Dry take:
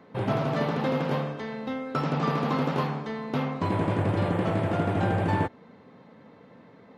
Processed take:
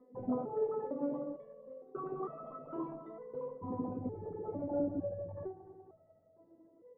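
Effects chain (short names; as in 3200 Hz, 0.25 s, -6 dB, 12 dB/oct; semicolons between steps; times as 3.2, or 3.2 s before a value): formant sharpening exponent 3; multi-head echo 98 ms, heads second and third, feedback 57%, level -17 dB; stepped resonator 2.2 Hz 250–650 Hz; gain +6 dB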